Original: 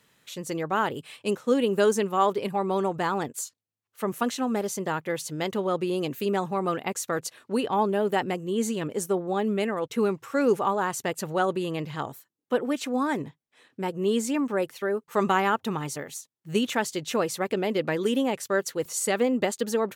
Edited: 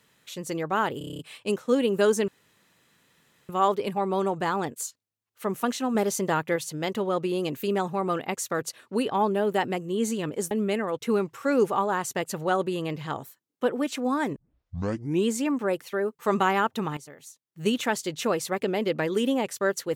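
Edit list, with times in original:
0:00.98: stutter 0.03 s, 8 plays
0:02.07: splice in room tone 1.21 s
0:04.53–0:05.14: clip gain +3.5 dB
0:09.09–0:09.40: remove
0:13.25: tape start 0.92 s
0:15.86–0:16.54: fade in quadratic, from −12.5 dB

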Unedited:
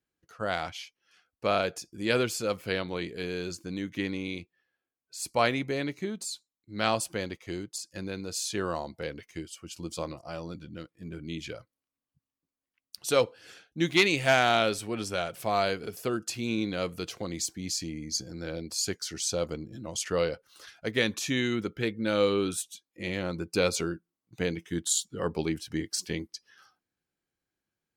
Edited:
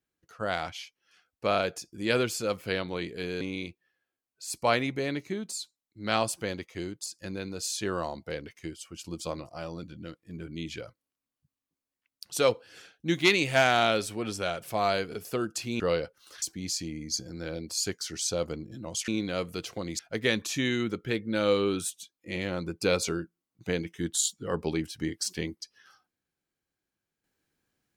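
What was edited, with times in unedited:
0:03.41–0:04.13: remove
0:16.52–0:17.43: swap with 0:20.09–0:20.71

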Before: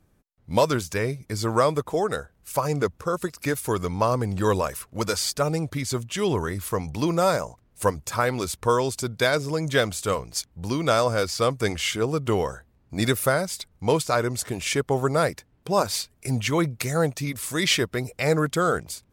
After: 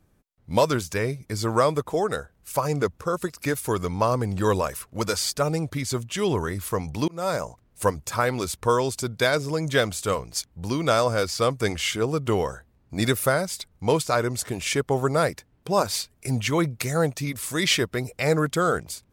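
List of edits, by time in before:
0:07.08–0:07.43: fade in

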